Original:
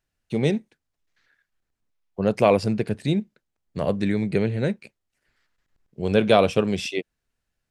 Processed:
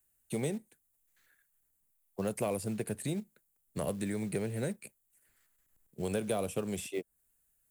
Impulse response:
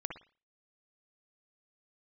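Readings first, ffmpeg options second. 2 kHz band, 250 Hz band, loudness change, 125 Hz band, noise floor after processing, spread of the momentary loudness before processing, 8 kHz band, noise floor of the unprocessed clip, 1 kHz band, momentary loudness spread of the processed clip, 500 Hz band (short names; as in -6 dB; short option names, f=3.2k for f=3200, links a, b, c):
-14.0 dB, -12.0 dB, -13.0 dB, -12.0 dB, -76 dBFS, 13 LU, n/a, -82 dBFS, -16.5 dB, 12 LU, -13.5 dB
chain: -filter_complex "[0:a]acrossover=split=100|540|1300|6300[a][b][c][d][e];[a]acompressor=threshold=-45dB:ratio=4[f];[b]acompressor=threshold=-30dB:ratio=4[g];[c]acompressor=threshold=-35dB:ratio=4[h];[d]acompressor=threshold=-44dB:ratio=4[i];[e]acompressor=threshold=-58dB:ratio=4[j];[f][g][h][i][j]amix=inputs=5:normalize=0,aexciter=amount=14:drive=3.2:freq=7.5k,acrusher=bits=6:mode=log:mix=0:aa=0.000001,volume=-5dB"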